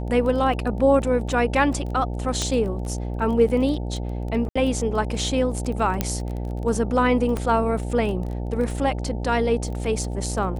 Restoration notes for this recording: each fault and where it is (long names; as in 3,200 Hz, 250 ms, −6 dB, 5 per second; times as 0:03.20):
mains buzz 60 Hz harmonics 15 −28 dBFS
surface crackle 16 per second −30 dBFS
0:02.42: click −11 dBFS
0:04.49–0:04.55: drop-out 65 ms
0:06.01: click −7 dBFS
0:07.37: click −14 dBFS